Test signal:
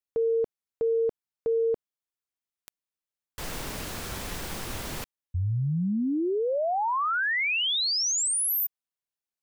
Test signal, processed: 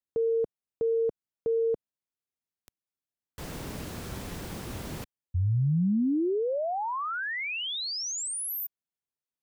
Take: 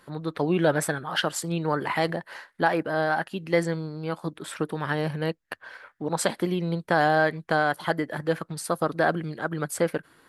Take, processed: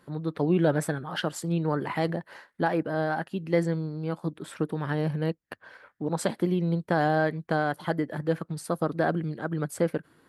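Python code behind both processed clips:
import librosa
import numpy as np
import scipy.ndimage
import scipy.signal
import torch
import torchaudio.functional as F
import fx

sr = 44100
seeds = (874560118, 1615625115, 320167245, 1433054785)

y = fx.highpass(x, sr, hz=92.0, slope=6)
y = fx.low_shelf(y, sr, hz=460.0, db=11.5)
y = y * librosa.db_to_amplitude(-7.0)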